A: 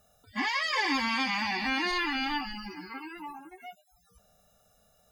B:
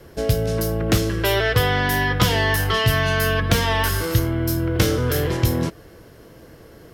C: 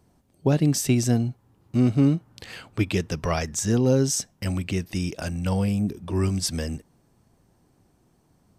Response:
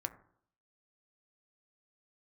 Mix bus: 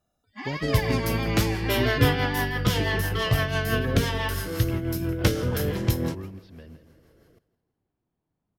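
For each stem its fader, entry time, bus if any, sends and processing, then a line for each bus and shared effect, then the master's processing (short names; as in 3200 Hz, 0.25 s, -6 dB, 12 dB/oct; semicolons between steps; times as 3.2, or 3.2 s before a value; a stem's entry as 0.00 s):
0.0 dB, 0.00 s, no send, no echo send, dry
0.0 dB, 0.45 s, no send, echo send -18.5 dB, high shelf 8100 Hz +6.5 dB; rotary speaker horn 6 Hz; soft clip -8 dBFS, distortion -25 dB
-7.0 dB, 0.00 s, no send, echo send -11.5 dB, steep low-pass 4000 Hz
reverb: off
echo: feedback echo 0.164 s, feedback 44%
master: high shelf 6500 Hz -6.5 dB; upward expander 1.5:1, over -38 dBFS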